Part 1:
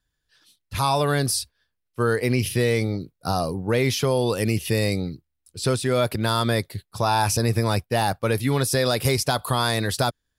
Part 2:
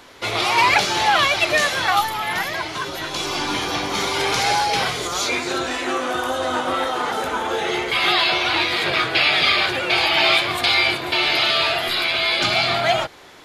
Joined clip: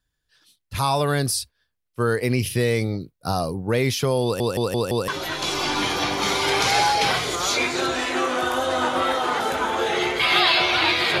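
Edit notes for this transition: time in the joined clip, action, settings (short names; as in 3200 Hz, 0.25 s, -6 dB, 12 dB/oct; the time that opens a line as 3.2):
part 1
4.23 stutter in place 0.17 s, 5 plays
5.08 switch to part 2 from 2.8 s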